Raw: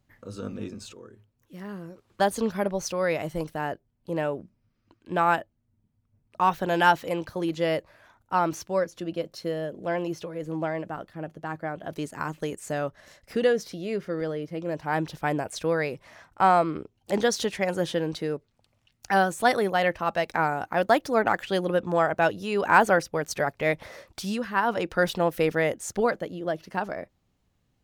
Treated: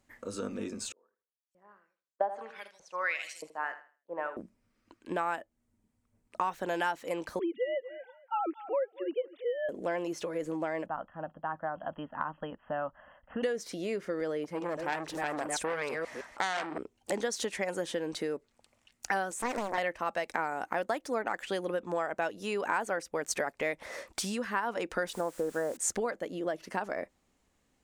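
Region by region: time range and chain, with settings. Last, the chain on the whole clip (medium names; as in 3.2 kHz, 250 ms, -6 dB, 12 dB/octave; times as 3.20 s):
0.92–4.37 s: LFO band-pass saw up 1.6 Hz 530–7400 Hz + feedback delay 79 ms, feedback 38%, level -12 dB + three bands expanded up and down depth 100%
7.39–9.69 s: formants replaced by sine waves + feedback delay 233 ms, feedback 18%, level -19.5 dB
10.86–13.43 s: brick-wall FIR low-pass 3.3 kHz + static phaser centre 940 Hz, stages 4
14.44–16.78 s: chunks repeated in reverse 161 ms, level -8 dB + transformer saturation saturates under 2.8 kHz
19.31–19.78 s: high-pass 110 Hz 24 dB/octave + compression 2.5:1, threshold -29 dBFS + loudspeaker Doppler distortion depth 0.98 ms
25.13–25.77 s: steep low-pass 1.7 kHz 96 dB/octave + word length cut 8-bit, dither triangular
whole clip: compression 6:1, threshold -32 dBFS; graphic EQ 125/250/500/1000/2000/8000 Hz -10/+5/+4/+4/+6/+11 dB; trim -2.5 dB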